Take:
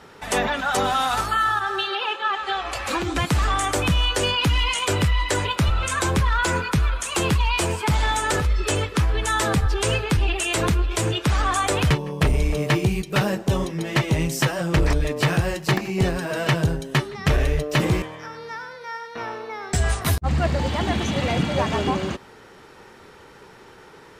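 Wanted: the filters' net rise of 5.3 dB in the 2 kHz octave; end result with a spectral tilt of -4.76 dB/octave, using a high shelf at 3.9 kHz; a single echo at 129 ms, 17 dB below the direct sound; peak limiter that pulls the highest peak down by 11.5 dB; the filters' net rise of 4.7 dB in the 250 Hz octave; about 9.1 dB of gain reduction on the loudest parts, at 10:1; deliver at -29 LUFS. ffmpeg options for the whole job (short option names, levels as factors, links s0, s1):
-af "equalizer=f=250:t=o:g=7,equalizer=f=2000:t=o:g=7.5,highshelf=f=3900:g=-3.5,acompressor=threshold=0.0794:ratio=10,alimiter=limit=0.0841:level=0:latency=1,aecho=1:1:129:0.141,volume=1.06"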